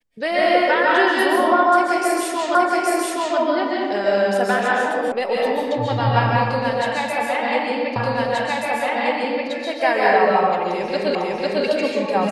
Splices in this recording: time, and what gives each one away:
0:02.55: the same again, the last 0.82 s
0:05.12: cut off before it has died away
0:07.96: the same again, the last 1.53 s
0:11.15: the same again, the last 0.5 s

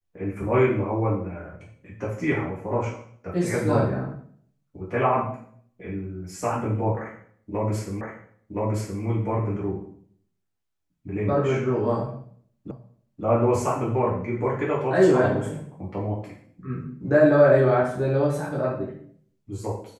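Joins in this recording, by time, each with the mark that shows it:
0:08.01: the same again, the last 1.02 s
0:12.71: the same again, the last 0.53 s

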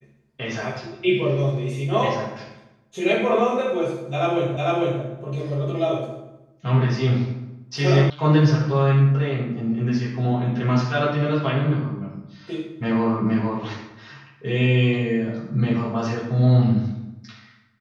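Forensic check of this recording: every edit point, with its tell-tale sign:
0:04.57: the same again, the last 0.45 s
0:08.10: cut off before it has died away

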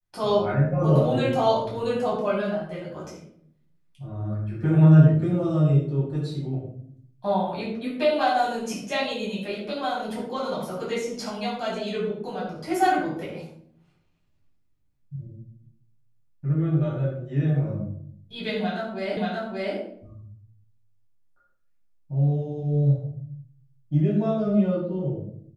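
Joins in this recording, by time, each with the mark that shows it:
0:19.17: the same again, the last 0.58 s

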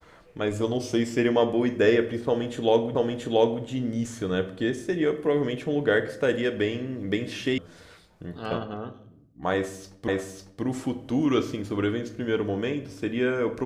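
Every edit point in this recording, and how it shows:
0:02.95: the same again, the last 0.68 s
0:07.58: cut off before it has died away
0:10.08: the same again, the last 0.55 s

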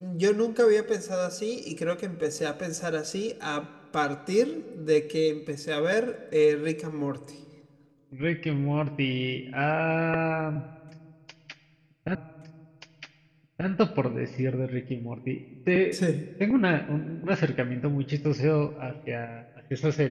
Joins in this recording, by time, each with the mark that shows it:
0:12.15: the same again, the last 1.53 s

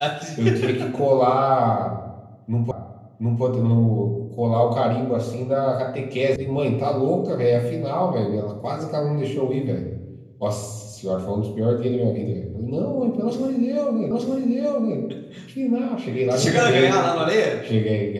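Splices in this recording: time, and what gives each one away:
0:02.71: the same again, the last 0.72 s
0:06.36: cut off before it has died away
0:14.11: the same again, the last 0.88 s

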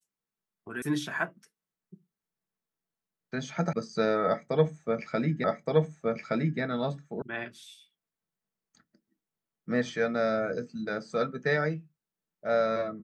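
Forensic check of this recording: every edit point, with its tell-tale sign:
0:00.82: cut off before it has died away
0:03.73: cut off before it has died away
0:05.44: the same again, the last 1.17 s
0:07.22: cut off before it has died away

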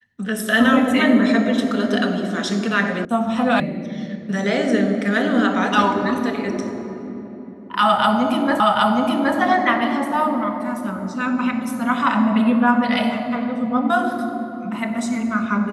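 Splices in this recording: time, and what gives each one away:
0:03.05: cut off before it has died away
0:03.60: cut off before it has died away
0:08.60: the same again, the last 0.77 s

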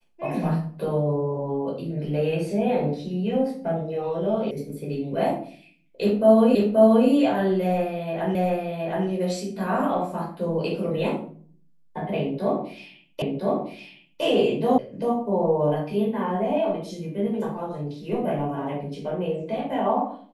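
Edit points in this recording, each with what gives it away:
0:04.51: cut off before it has died away
0:06.55: the same again, the last 0.53 s
0:08.35: the same again, the last 0.72 s
0:13.22: the same again, the last 1.01 s
0:14.78: cut off before it has died away

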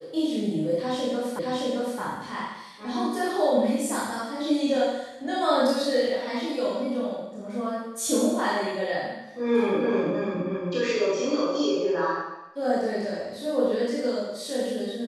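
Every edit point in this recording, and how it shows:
0:01.39: the same again, the last 0.62 s

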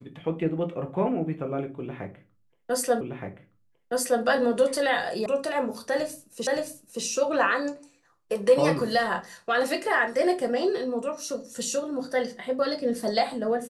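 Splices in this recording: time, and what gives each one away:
0:03.01: the same again, the last 1.22 s
0:05.26: cut off before it has died away
0:06.47: the same again, the last 0.57 s

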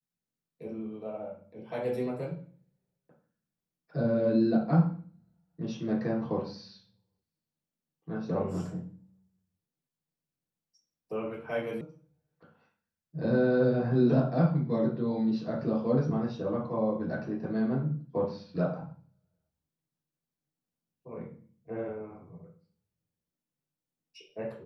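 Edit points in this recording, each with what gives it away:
0:11.81: cut off before it has died away

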